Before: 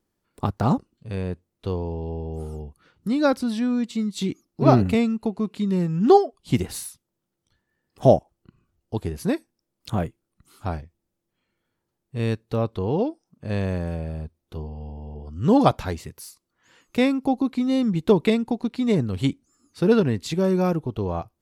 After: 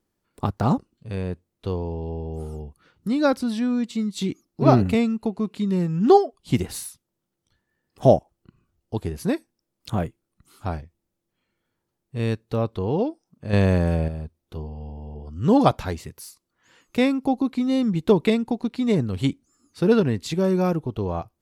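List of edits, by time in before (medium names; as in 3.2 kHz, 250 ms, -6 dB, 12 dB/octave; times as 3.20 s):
13.53–14.08 s: gain +7 dB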